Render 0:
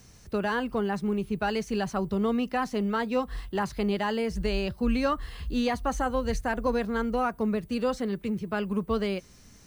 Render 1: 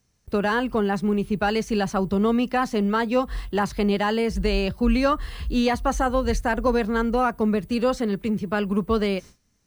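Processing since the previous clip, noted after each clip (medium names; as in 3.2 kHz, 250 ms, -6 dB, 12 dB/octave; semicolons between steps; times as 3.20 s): gate with hold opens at -39 dBFS; trim +5.5 dB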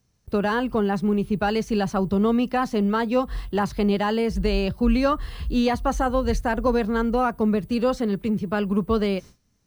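graphic EQ 125/2000/8000 Hz +3/-3/-4 dB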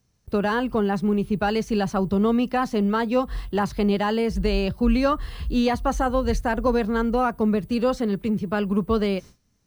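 no audible change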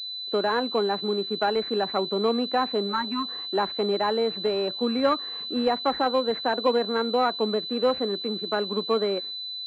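spectral replace 2.90–3.26 s, 410–840 Hz; high-pass 280 Hz 24 dB/octave; class-D stage that switches slowly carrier 4 kHz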